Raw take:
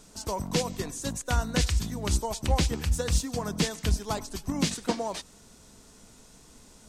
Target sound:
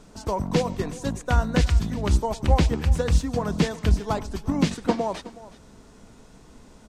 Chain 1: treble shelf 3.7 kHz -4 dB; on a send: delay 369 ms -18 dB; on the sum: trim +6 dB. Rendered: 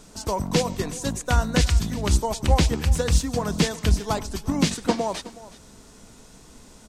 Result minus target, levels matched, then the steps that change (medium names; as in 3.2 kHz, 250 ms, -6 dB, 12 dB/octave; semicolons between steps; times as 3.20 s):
8 kHz band +8.0 dB
change: treble shelf 3.7 kHz -15 dB